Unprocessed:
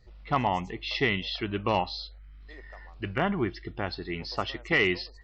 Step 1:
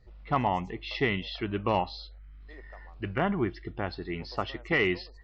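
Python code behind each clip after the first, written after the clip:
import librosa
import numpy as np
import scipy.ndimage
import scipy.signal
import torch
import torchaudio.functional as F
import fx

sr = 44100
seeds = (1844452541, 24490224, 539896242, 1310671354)

y = fx.high_shelf(x, sr, hz=3300.0, db=-9.5)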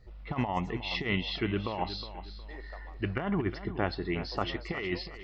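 y = fx.over_compress(x, sr, threshold_db=-29.0, ratio=-0.5)
y = fx.echo_feedback(y, sr, ms=363, feedback_pct=31, wet_db=-12.5)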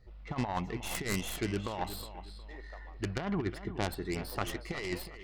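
y = fx.tracing_dist(x, sr, depth_ms=0.32)
y = y * librosa.db_to_amplitude(-3.0)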